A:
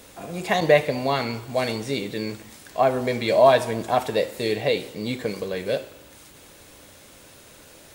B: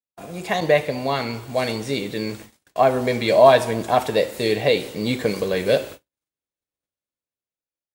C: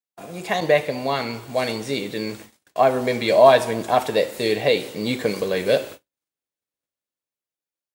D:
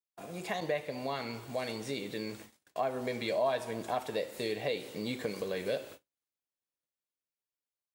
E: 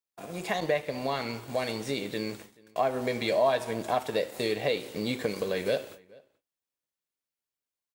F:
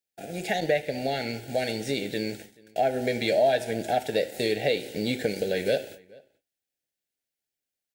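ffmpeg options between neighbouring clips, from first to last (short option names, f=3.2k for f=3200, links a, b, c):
-af "agate=range=-56dB:threshold=-41dB:ratio=16:detection=peak,dynaudnorm=f=360:g=7:m=11.5dB,volume=-1dB"
-af "lowshelf=f=83:g=-11.5"
-af "acompressor=threshold=-28dB:ratio=2,volume=-7.5dB"
-filter_complex "[0:a]asplit=2[a][b];[b]aeval=exprs='sgn(val(0))*max(abs(val(0))-0.00531,0)':c=same,volume=-3dB[c];[a][c]amix=inputs=2:normalize=0,asplit=2[d][e];[e]adelay=431.5,volume=-25dB,highshelf=f=4k:g=-9.71[f];[d][f]amix=inputs=2:normalize=0,volume=1.5dB"
-af "asuperstop=centerf=1100:order=8:qfactor=1.9,volume=3dB"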